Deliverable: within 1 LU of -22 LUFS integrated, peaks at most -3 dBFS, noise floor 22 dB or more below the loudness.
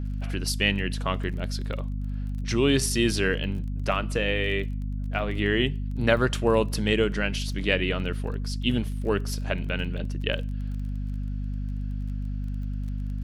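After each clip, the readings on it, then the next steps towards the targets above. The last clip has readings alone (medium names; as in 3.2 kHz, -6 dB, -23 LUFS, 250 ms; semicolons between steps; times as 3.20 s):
tick rate 21 per s; hum 50 Hz; highest harmonic 250 Hz; hum level -27 dBFS; loudness -27.5 LUFS; peak level -6.5 dBFS; loudness target -22.0 LUFS
-> de-click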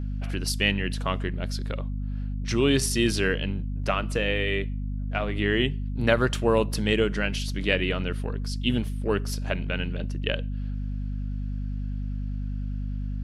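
tick rate 0 per s; hum 50 Hz; highest harmonic 250 Hz; hum level -27 dBFS
-> de-hum 50 Hz, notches 5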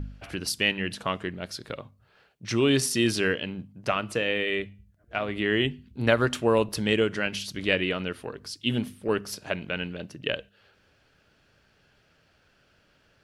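hum not found; loudness -27.5 LUFS; peak level -7.0 dBFS; loudness target -22.0 LUFS
-> trim +5.5 dB; peak limiter -3 dBFS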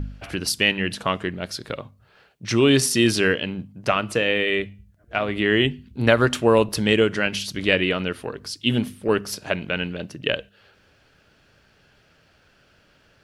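loudness -22.0 LUFS; peak level -3.0 dBFS; noise floor -59 dBFS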